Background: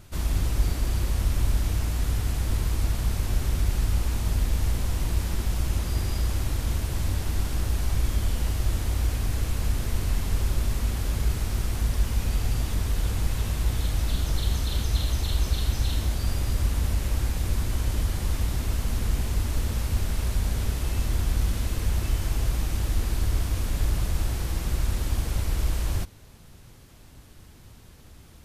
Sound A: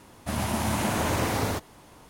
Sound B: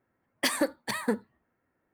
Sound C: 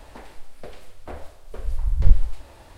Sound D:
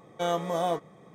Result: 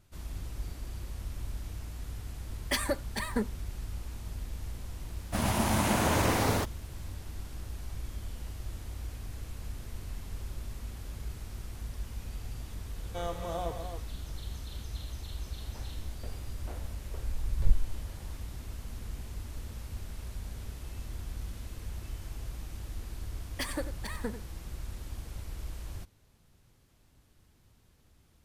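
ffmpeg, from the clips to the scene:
ffmpeg -i bed.wav -i cue0.wav -i cue1.wav -i cue2.wav -i cue3.wav -filter_complex "[2:a]asplit=2[link_01][link_02];[0:a]volume=-14.5dB[link_03];[link_01]aecho=1:1:5:0.47[link_04];[1:a]aeval=exprs='sgn(val(0))*max(abs(val(0))-0.00422,0)':channel_layout=same[link_05];[4:a]aecho=1:1:131.2|268.2:0.282|0.398[link_06];[link_02]aecho=1:1:92:0.266[link_07];[link_04]atrim=end=1.93,asetpts=PTS-STARTPTS,volume=-4dB,afade=type=in:duration=0.004:curve=hsin,afade=type=out:start_time=1.926:duration=0.004:curve=hsin,adelay=2280[link_08];[link_05]atrim=end=2.09,asetpts=PTS-STARTPTS,afade=type=in:duration=0.004:curve=hsin,afade=type=out:start_time=2.086:duration=0.004:curve=hsin,adelay=5060[link_09];[link_06]atrim=end=1.14,asetpts=PTS-STARTPTS,volume=-9dB,afade=type=in:duration=0.004:curve=hsin,afade=type=out:start_time=1.136:duration=0.004:curve=hsin,adelay=12950[link_10];[3:a]atrim=end=2.77,asetpts=PTS-STARTPTS,volume=-10dB,afade=type=in:duration=0.004:curve=hsin,afade=type=out:start_time=2.766:duration=0.004:curve=hsin,adelay=15600[link_11];[link_07]atrim=end=1.93,asetpts=PTS-STARTPTS,volume=-9dB,afade=type=in:duration=0.004:curve=hsin,afade=type=out:start_time=1.926:duration=0.004:curve=hsin,adelay=23160[link_12];[link_03][link_08][link_09][link_10][link_11][link_12]amix=inputs=6:normalize=0" out.wav

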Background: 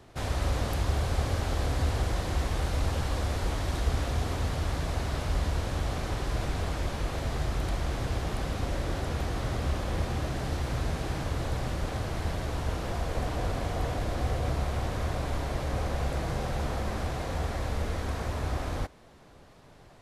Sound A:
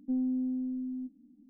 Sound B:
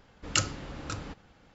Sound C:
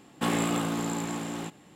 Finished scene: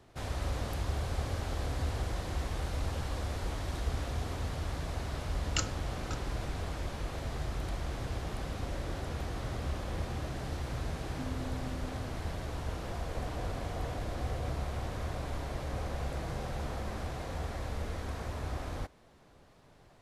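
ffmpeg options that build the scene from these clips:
ffmpeg -i bed.wav -i cue0.wav -i cue1.wav -filter_complex "[0:a]volume=-6dB[link_01];[2:a]atrim=end=1.54,asetpts=PTS-STARTPTS,volume=-6.5dB,afade=type=in:duration=0.004:curve=hsin,afade=type=out:start_time=1.536:duration=0.004:curve=hsin,adelay=229761S[link_02];[1:a]atrim=end=1.49,asetpts=PTS-STARTPTS,volume=-13dB,afade=type=in:duration=0.004:curve=hsin,afade=type=out:start_time=1.486:duration=0.004:curve=hsin,adelay=11090[link_03];[link_01][link_02][link_03]amix=inputs=3:normalize=0" out.wav

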